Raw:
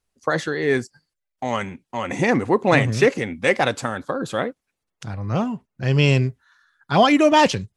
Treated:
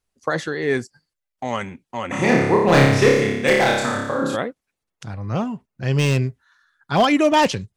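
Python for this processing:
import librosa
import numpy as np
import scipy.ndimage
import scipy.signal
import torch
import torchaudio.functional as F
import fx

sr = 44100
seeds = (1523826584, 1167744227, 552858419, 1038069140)

y = 10.0 ** (-7.5 / 20.0) * (np.abs((x / 10.0 ** (-7.5 / 20.0) + 3.0) % 4.0 - 2.0) - 1.0)
y = fx.room_flutter(y, sr, wall_m=5.0, rt60_s=0.94, at=(2.11, 4.35), fade=0.02)
y = F.gain(torch.from_numpy(y), -1.0).numpy()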